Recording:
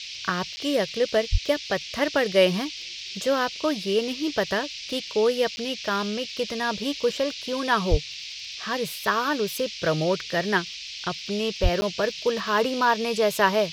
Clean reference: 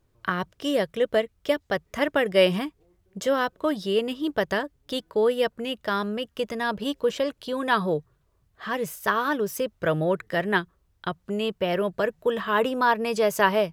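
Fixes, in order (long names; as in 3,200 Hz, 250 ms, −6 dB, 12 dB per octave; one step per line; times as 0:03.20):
click removal
high-pass at the plosives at 0:01.31/0:07.90/0:11.62
repair the gap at 0:00.56/0:05.56/0:11.81, 10 ms
noise reduction from a noise print 29 dB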